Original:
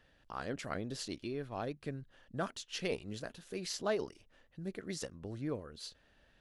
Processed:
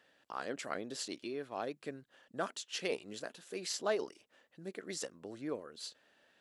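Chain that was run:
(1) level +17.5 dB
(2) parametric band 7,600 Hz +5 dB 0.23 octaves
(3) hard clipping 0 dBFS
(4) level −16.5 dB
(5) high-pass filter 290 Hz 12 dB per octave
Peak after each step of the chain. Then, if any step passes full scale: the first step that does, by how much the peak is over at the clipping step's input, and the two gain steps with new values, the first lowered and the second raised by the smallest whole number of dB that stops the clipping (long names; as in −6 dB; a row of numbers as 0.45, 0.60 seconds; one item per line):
−3.5, −3.5, −3.5, −20.0, −20.5 dBFS
no step passes full scale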